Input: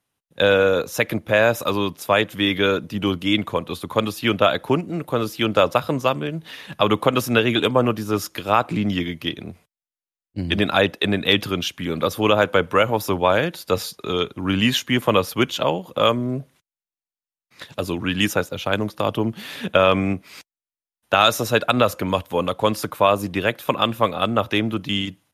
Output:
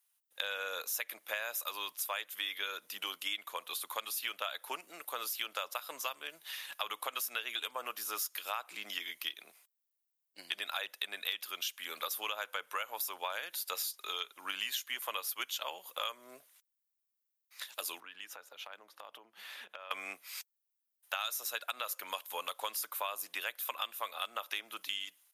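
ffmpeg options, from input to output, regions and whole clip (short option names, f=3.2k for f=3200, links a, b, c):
-filter_complex "[0:a]asettb=1/sr,asplit=3[a][b][c];[a]atrim=end=18.004[d];[b]atrim=start=18:end=19.91,asetpts=PTS-STARTPTS,afade=t=in:d=0.004:c=qsin,afade=t=out:st=1.906:d=0.004:c=qsin,lowpass=f=1.3k:p=1,acompressor=threshold=-30dB:ratio=12:attack=3.2:release=140:knee=1:detection=peak[e];[c]atrim=start=19.906[f];[d][e]acrossfade=d=0.004:c1=hsin:c2=qsin[g];[g][f]acrossfade=d=0.004:c1=qsin:c2=hsin,highpass=970,aemphasis=mode=production:type=bsi,acompressor=threshold=-26dB:ratio=6,volume=-8dB"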